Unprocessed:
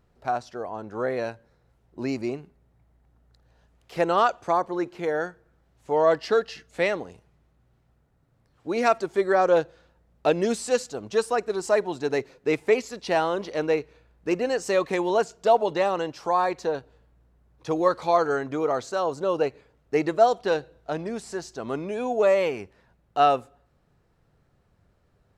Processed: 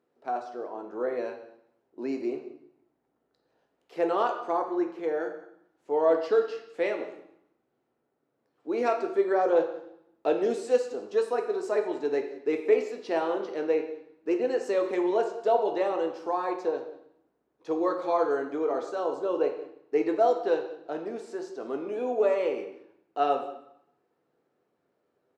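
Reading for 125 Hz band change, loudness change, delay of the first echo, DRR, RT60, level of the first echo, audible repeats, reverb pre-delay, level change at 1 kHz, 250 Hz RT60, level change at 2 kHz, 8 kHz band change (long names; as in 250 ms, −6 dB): below −15 dB, −3.5 dB, 181 ms, 3.5 dB, 0.75 s, −20.0 dB, 1, 4 ms, −5.5 dB, 0.90 s, −8.0 dB, below −10 dB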